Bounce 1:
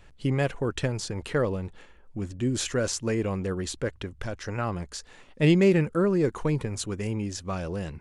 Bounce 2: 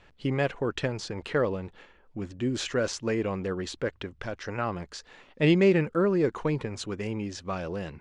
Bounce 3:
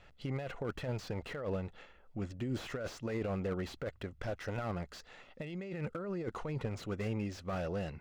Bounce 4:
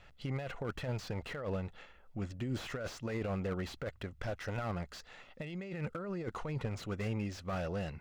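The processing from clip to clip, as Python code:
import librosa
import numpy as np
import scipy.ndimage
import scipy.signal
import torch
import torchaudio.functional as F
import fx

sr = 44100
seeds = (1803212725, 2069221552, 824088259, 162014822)

y1 = scipy.signal.sosfilt(scipy.signal.butter(2, 4700.0, 'lowpass', fs=sr, output='sos'), x)
y1 = fx.low_shelf(y1, sr, hz=140.0, db=-10.0)
y1 = F.gain(torch.from_numpy(y1), 1.0).numpy()
y2 = y1 + 0.34 * np.pad(y1, (int(1.5 * sr / 1000.0), 0))[:len(y1)]
y2 = fx.over_compress(y2, sr, threshold_db=-30.0, ratio=-1.0)
y2 = fx.slew_limit(y2, sr, full_power_hz=33.0)
y2 = F.gain(torch.from_numpy(y2), -6.0).numpy()
y3 = fx.peak_eq(y2, sr, hz=370.0, db=-3.5, octaves=1.6)
y3 = F.gain(torch.from_numpy(y3), 1.5).numpy()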